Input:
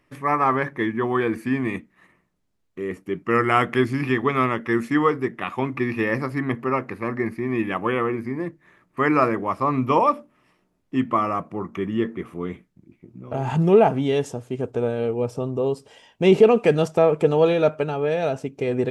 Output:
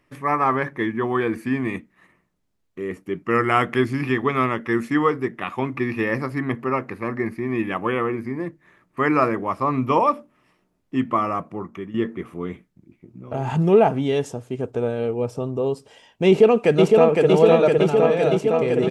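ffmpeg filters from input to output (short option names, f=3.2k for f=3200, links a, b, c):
-filter_complex "[0:a]asplit=2[a][b];[b]afade=t=in:st=16.27:d=0.01,afade=t=out:st=17.27:d=0.01,aecho=0:1:510|1020|1530|2040|2550|3060|3570|4080|4590|5100|5610|6120:0.794328|0.635463|0.50837|0.406696|0.325357|0.260285|0.208228|0.166583|0.133266|0.106613|0.0852903|0.0682323[c];[a][c]amix=inputs=2:normalize=0,asplit=2[d][e];[d]atrim=end=11.94,asetpts=PTS-STARTPTS,afade=t=out:st=11.32:d=0.62:c=qsin:silence=0.281838[f];[e]atrim=start=11.94,asetpts=PTS-STARTPTS,afade=t=in:d=0.004:c=hsin:silence=0.281838[g];[f][g]concat=n=2:v=0:a=1"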